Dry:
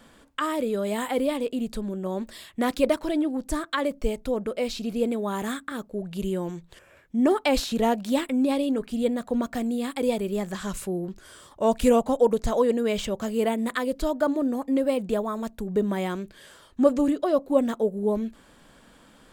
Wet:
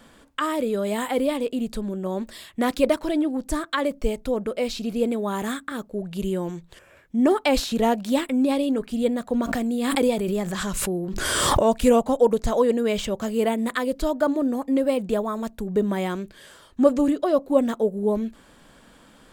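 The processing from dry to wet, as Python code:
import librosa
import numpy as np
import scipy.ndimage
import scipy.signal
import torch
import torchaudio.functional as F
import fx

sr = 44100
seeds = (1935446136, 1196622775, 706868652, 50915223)

y = fx.pre_swell(x, sr, db_per_s=23.0, at=(9.36, 11.62), fade=0.02)
y = y * librosa.db_to_amplitude(2.0)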